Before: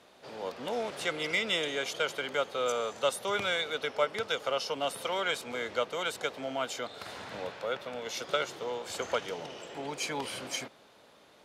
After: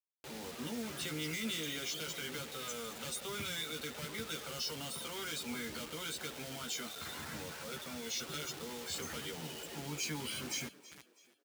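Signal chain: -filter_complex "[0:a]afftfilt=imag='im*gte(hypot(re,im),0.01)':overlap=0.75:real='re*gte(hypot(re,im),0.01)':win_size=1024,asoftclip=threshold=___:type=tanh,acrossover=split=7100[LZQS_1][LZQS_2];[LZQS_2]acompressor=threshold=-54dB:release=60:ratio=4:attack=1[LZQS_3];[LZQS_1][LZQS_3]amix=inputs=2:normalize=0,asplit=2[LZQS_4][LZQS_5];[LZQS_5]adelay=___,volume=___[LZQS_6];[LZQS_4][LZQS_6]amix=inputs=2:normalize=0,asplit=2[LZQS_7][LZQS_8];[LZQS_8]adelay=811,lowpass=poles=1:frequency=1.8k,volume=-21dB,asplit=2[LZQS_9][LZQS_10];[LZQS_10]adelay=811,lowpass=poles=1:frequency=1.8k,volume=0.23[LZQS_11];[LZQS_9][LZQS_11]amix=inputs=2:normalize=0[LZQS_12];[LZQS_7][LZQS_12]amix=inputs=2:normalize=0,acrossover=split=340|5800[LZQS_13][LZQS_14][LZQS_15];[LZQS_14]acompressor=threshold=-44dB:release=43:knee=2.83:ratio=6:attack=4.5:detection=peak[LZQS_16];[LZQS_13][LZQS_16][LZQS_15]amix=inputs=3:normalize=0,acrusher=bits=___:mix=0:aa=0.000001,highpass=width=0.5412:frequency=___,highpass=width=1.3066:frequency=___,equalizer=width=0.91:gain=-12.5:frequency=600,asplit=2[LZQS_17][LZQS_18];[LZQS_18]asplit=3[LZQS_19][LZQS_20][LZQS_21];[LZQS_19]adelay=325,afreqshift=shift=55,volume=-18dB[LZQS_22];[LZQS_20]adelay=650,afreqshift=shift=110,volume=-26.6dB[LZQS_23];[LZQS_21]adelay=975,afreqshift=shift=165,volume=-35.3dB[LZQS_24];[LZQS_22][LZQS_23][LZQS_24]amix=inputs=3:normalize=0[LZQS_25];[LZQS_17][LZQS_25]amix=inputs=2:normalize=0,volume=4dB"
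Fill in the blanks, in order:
-28.5dB, 13, -2dB, 7, 45, 45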